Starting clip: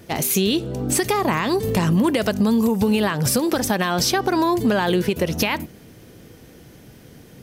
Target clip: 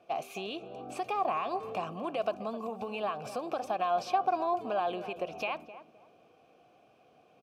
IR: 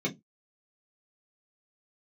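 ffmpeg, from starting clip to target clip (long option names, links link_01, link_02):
-filter_complex "[0:a]asplit=3[link_01][link_02][link_03];[link_01]bandpass=frequency=730:width_type=q:width=8,volume=0dB[link_04];[link_02]bandpass=frequency=1090:width_type=q:width=8,volume=-6dB[link_05];[link_03]bandpass=frequency=2440:width_type=q:width=8,volume=-9dB[link_06];[link_04][link_05][link_06]amix=inputs=3:normalize=0,asplit=2[link_07][link_08];[link_08]adelay=260,lowpass=frequency=1200:poles=1,volume=-12dB,asplit=2[link_09][link_10];[link_10]adelay=260,lowpass=frequency=1200:poles=1,volume=0.29,asplit=2[link_11][link_12];[link_12]adelay=260,lowpass=frequency=1200:poles=1,volume=0.29[link_13];[link_07][link_09][link_11][link_13]amix=inputs=4:normalize=0"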